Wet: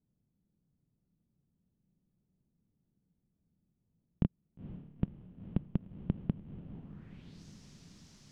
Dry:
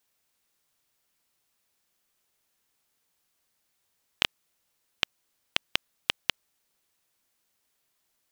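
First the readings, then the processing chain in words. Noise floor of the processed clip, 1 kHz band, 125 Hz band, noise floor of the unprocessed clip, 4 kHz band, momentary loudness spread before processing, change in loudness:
-81 dBFS, -16.0 dB, +17.5 dB, -76 dBFS, under -30 dB, 3 LU, -8.5 dB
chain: low-pass sweep 180 Hz -> 5700 Hz, 6.3–7.43; diffused feedback echo 0.478 s, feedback 63%, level -12 dB; gain +12 dB

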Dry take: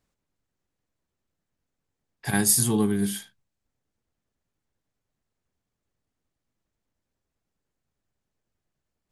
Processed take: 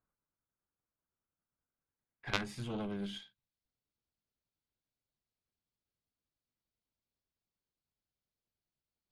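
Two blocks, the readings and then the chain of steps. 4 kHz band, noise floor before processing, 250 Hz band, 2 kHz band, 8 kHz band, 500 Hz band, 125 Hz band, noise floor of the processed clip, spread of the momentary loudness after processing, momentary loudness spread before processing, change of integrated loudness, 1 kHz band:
-9.0 dB, -84 dBFS, -16.0 dB, -9.0 dB, -32.0 dB, -13.0 dB, -15.0 dB, under -85 dBFS, 10 LU, 15 LU, -17.0 dB, -9.0 dB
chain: low-pass sweep 1400 Hz -> 4500 Hz, 1.61–3.64; added harmonics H 3 -7 dB, 6 -27 dB, 7 -42 dB, 8 -25 dB, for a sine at -6 dBFS; notch 1800 Hz, Q 10; gain -4.5 dB

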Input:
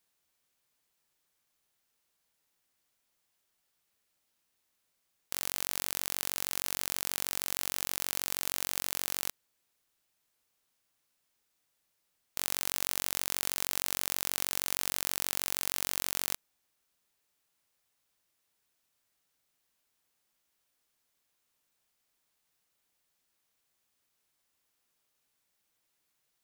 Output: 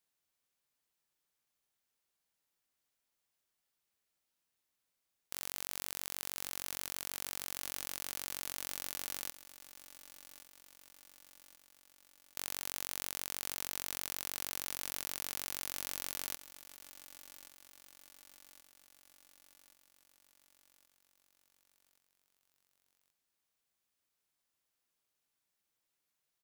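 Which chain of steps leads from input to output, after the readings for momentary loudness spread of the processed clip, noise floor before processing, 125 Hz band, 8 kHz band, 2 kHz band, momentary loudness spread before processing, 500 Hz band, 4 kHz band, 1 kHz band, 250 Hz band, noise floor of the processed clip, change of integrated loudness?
19 LU, -79 dBFS, -7.5 dB, -7.0 dB, -7.0 dB, 3 LU, -7.0 dB, -7.0 dB, -7.0 dB, -6.5 dB, -85 dBFS, -7.0 dB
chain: feedback echo 1.126 s, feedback 57%, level -15 dB; gain -7 dB

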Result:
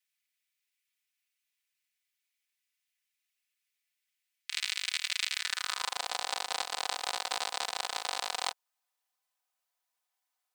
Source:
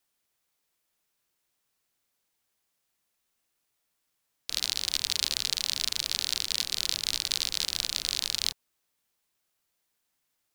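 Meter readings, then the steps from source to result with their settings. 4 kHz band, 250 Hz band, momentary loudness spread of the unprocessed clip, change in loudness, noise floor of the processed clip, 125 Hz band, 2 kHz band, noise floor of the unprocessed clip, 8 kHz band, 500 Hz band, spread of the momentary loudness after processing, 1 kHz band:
-6.5 dB, -8.5 dB, 3 LU, -5.0 dB, -85 dBFS, under -25 dB, +3.0 dB, -79 dBFS, -6.5 dB, +7.0 dB, 4 LU, +13.0 dB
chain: minimum comb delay 4 ms; high-pass sweep 2200 Hz -> 790 Hz, 5.31–6.01; gain -5.5 dB

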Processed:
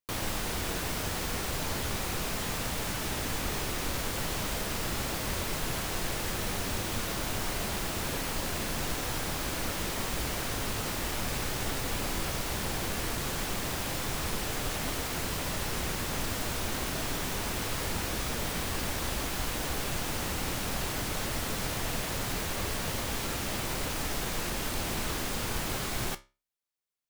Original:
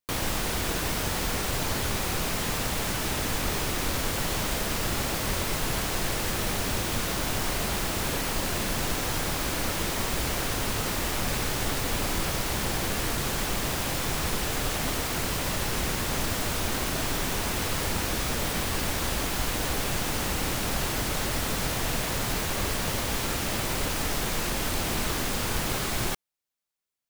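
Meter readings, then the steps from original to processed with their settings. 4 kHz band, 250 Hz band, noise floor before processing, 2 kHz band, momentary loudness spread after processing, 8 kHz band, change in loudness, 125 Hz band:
-4.5 dB, -4.5 dB, -30 dBFS, -4.5 dB, 0 LU, -4.5 dB, -4.5 dB, -4.5 dB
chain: flange 0.14 Hz, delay 8.9 ms, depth 9.7 ms, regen -70%

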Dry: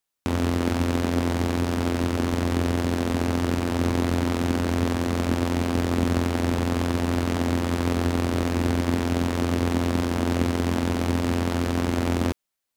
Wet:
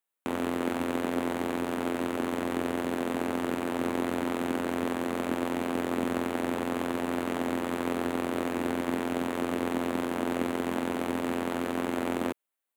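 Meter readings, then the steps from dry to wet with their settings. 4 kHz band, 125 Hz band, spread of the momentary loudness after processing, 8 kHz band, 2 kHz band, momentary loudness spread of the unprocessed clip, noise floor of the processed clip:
-7.5 dB, -18.0 dB, 1 LU, -7.5 dB, -3.5 dB, 1 LU, under -85 dBFS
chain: HPF 270 Hz 12 dB/oct; bell 5200 Hz -13.5 dB 0.75 oct; gain -2.5 dB

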